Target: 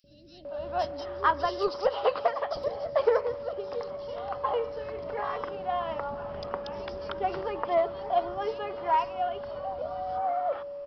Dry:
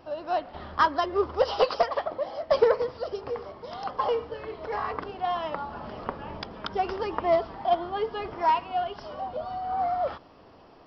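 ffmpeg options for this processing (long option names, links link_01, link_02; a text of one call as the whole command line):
ffmpeg -i in.wav -filter_complex "[0:a]aeval=exprs='val(0)+0.0224*sin(2*PI*570*n/s)':channel_layout=same,acrossover=split=280|3700[link_01][link_02][link_03];[link_01]adelay=40[link_04];[link_02]adelay=450[link_05];[link_04][link_05][link_03]amix=inputs=3:normalize=0,volume=-2dB" out.wav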